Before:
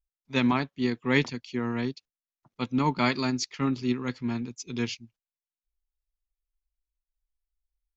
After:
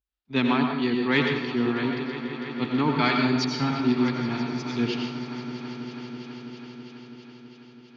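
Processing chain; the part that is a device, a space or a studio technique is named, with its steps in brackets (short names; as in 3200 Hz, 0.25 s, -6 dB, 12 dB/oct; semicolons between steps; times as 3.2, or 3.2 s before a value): 3.35–3.81 comb 1.3 ms, depth 97%; swelling echo 0.164 s, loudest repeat 5, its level -18 dB; guitar amplifier with harmonic tremolo (harmonic tremolo 3.1 Hz, depth 50%, crossover 550 Hz; soft clip -16.5 dBFS, distortion -21 dB; speaker cabinet 78–4300 Hz, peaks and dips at 100 Hz -9 dB, 170 Hz -8 dB, 550 Hz -6 dB, 1000 Hz -4 dB, 2100 Hz -4 dB); plate-style reverb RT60 0.69 s, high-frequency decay 0.9×, pre-delay 75 ms, DRR 2.5 dB; gain +6.5 dB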